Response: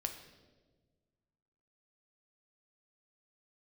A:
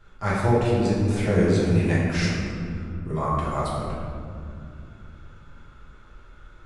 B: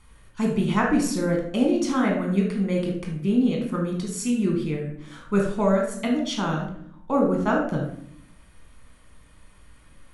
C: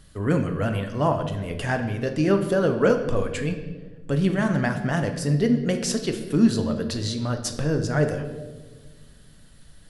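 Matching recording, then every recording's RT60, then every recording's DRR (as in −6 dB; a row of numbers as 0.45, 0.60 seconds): C; 2.4, 0.65, 1.4 seconds; −8.5, 0.0, 5.0 decibels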